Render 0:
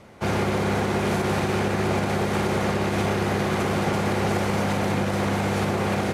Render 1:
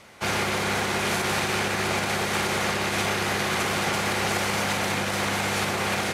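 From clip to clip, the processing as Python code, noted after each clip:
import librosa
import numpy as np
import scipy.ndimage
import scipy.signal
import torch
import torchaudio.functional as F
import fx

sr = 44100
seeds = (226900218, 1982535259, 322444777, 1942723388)

y = fx.tilt_shelf(x, sr, db=-7.5, hz=970.0)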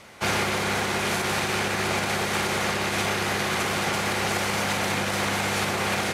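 y = fx.rider(x, sr, range_db=10, speed_s=0.5)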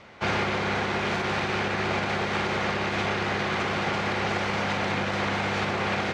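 y = fx.air_absorb(x, sr, metres=170.0)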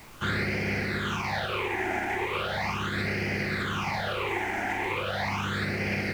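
y = fx.phaser_stages(x, sr, stages=8, low_hz=150.0, high_hz=1100.0, hz=0.38, feedback_pct=35)
y = fx.dmg_noise_colour(y, sr, seeds[0], colour='pink', level_db=-51.0)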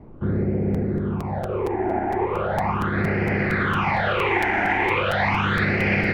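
y = fx.filter_sweep_lowpass(x, sr, from_hz=420.0, to_hz=2500.0, start_s=0.98, end_s=4.29, q=0.94)
y = fx.buffer_crackle(y, sr, first_s=0.74, period_s=0.23, block=256, kind='repeat')
y = F.gain(torch.from_numpy(y), 8.5).numpy()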